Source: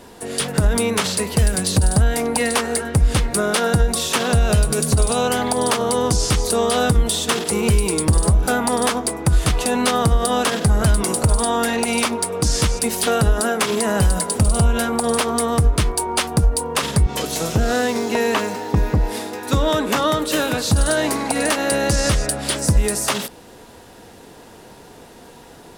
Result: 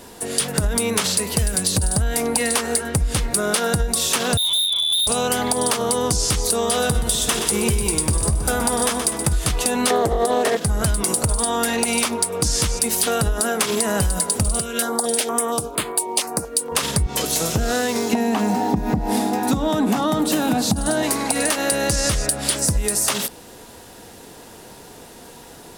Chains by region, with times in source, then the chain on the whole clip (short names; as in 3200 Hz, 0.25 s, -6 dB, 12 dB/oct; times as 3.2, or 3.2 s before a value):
4.37–5.07 EQ curve 160 Hz 0 dB, 240 Hz +7 dB, 360 Hz -9 dB, 1900 Hz -18 dB, 2900 Hz -2 dB, 6600 Hz -20 dB + inverted band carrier 3700 Hz + overloaded stage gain 18.5 dB
6.65–9.33 notch 4400 Hz, Q 17 + doubler 14 ms -11 dB + feedback echo 0.124 s, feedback 56%, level -11 dB
9.9–10.57 small resonant body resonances 430/640/1800 Hz, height 18 dB, ringing for 35 ms + Doppler distortion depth 0.38 ms
14.59–16.72 HPF 280 Hz + stepped notch 4.3 Hz 850–5700 Hz
18.13–21.03 compressor 2.5:1, threshold -21 dBFS + small resonant body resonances 220/740 Hz, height 16 dB, ringing for 25 ms
whole clip: high shelf 4900 Hz +8 dB; compressor, threshold -16 dBFS